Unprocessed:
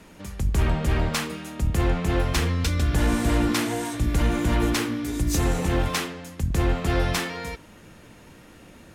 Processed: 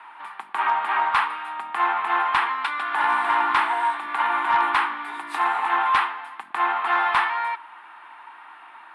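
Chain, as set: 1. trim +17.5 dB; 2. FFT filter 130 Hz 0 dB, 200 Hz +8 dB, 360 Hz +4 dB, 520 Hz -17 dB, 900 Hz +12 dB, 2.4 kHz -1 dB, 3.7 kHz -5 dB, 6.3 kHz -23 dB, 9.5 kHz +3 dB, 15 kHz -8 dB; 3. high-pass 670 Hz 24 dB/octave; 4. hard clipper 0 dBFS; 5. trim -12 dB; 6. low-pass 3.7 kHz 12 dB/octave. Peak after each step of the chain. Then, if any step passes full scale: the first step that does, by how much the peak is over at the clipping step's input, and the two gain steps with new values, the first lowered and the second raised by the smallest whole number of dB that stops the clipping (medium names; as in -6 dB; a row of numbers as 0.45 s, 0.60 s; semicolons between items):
+5.5 dBFS, +10.5 dBFS, +9.0 dBFS, 0.0 dBFS, -12.0 dBFS, -11.5 dBFS; step 1, 9.0 dB; step 1 +8.5 dB, step 5 -3 dB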